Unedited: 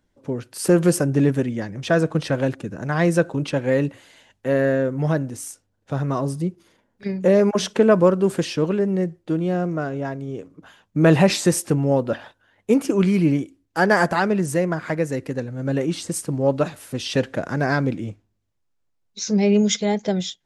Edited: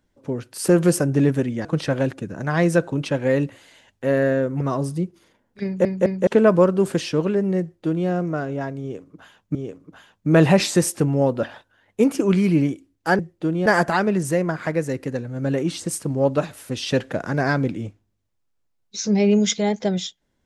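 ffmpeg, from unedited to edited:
-filter_complex "[0:a]asplit=9[s0][s1][s2][s3][s4][s5][s6][s7][s8];[s0]atrim=end=1.652[s9];[s1]atrim=start=2.068:end=5.032[s10];[s2]atrim=start=6.048:end=7.292[s11];[s3]atrim=start=7.078:end=7.292[s12];[s4]atrim=start=7.078:end=7.292[s13];[s5]atrim=start=7.708:end=10.992[s14];[s6]atrim=start=10.248:end=13.892[s15];[s7]atrim=start=9.048:end=9.522[s16];[s8]atrim=start=13.888[s17];[s9][s10]acrossfade=d=0.004:c1=hsin:c2=hsin[s18];[s18][s11]acrossfade=d=0.004:c1=hsin:c2=hsin[s19];[s19][s12]acrossfade=d=0.004:c1=hsin:c2=hsin[s20];[s20][s13]acrossfade=d=0.004:c1=hsin:c2=hsin[s21];[s21][s14]acrossfade=d=0.004:c1=hsin:c2=hsin[s22];[s22][s15]acrossfade=d=0.004:c1=hsin:c2=hsin[s23];[s23][s16]acrossfade=d=0.004:c1=hsin:c2=hsin[s24];[s24][s17]acrossfade=d=0.004:c1=hsin:c2=hsin"

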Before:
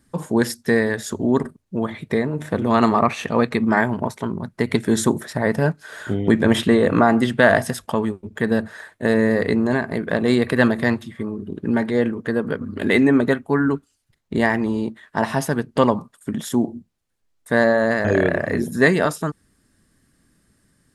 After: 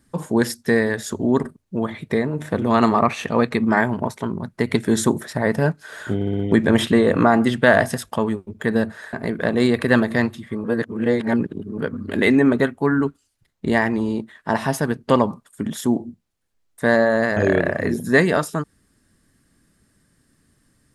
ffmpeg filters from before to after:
-filter_complex "[0:a]asplit=8[s0][s1][s2][s3][s4][s5][s6][s7];[s0]atrim=end=6.212[s8];[s1]atrim=start=6.148:end=6.212[s9];[s2]atrim=start=6.148:end=6.212[s10];[s3]atrim=start=6.148:end=6.212[s11];[s4]atrim=start=6.148:end=8.892[s12];[s5]atrim=start=9.808:end=11.322[s13];[s6]atrim=start=11.318:end=12.462,asetpts=PTS-STARTPTS,areverse[s14];[s7]atrim=start=12.458[s15];[s8][s9]acrossfade=d=0.004:c1=hsin:c2=hsin[s16];[s16][s10]acrossfade=d=0.004:c1=hsin:c2=hsin[s17];[s17][s11]acrossfade=d=0.004:c1=hsin:c2=hsin[s18];[s18][s12]acrossfade=d=0.004:c1=hsin:c2=hsin[s19];[s19][s13]acrossfade=d=0.004:c1=hsin:c2=hsin[s20];[s20][s14]acrossfade=d=0.004:c1=hsin:c2=hsin[s21];[s21][s15]acrossfade=d=0.004:c1=hsin:c2=hsin"

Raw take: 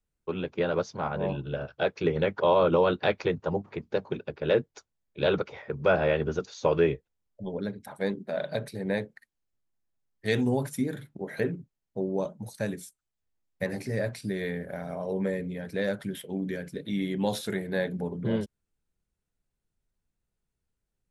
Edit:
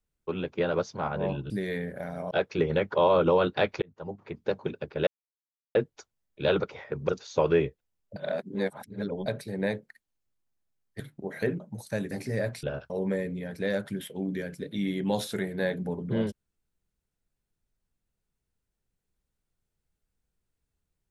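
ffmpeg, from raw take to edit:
-filter_complex "[0:a]asplit=13[s0][s1][s2][s3][s4][s5][s6][s7][s8][s9][s10][s11][s12];[s0]atrim=end=1.502[s13];[s1]atrim=start=14.228:end=15.042[s14];[s2]atrim=start=1.768:end=3.28,asetpts=PTS-STARTPTS,afade=t=out:st=1.508:d=0.004:c=hsin[s15];[s3]atrim=start=3.28:end=4.53,asetpts=PTS-STARTPTS,afade=t=in:d=0.7,afade=t=out:st=1.246:d=0.004:c=hsin,apad=pad_dur=0.68[s16];[s4]atrim=start=4.53:end=5.872,asetpts=PTS-STARTPTS,afade=t=in:d=0.004:c=hsin[s17];[s5]atrim=start=6.358:end=7.432[s18];[s6]atrim=start=7.428:end=8.532,asetpts=PTS-STARTPTS,areverse[s19];[s7]atrim=start=8.528:end=10.272[s20];[s8]atrim=start=10.968:end=11.572[s21];[s9]atrim=start=12.278:end=12.792[s22];[s10]atrim=start=13.708:end=14.232[s23];[s11]atrim=start=1.498:end=1.772[s24];[s12]atrim=start=15.038[s25];[s13][s14]acrossfade=d=0.004:c1=hsin:c2=hsin[s26];[s15][s16][s17]concat=n=3:v=0:a=1[s27];[s26][s27]acrossfade=d=0.004:c1=hsin:c2=hsin[s28];[s28][s18]acrossfade=d=0.004:c1=hsin:c2=hsin[s29];[s29][s19]acrossfade=d=0.004:c1=hsin:c2=hsin[s30];[s30][s20]acrossfade=d=0.004:c1=hsin:c2=hsin[s31];[s31][s21]acrossfade=d=0.004:c1=hsin:c2=hsin[s32];[s32][s22]acrossfade=d=0.004:c1=hsin:c2=hsin[s33];[s33][s23]acrossfade=d=0.004:c1=hsin:c2=hsin[s34];[s34][s24]acrossfade=d=0.004:c1=hsin:c2=hsin[s35];[s35][s25]acrossfade=d=0.004:c1=hsin:c2=hsin"

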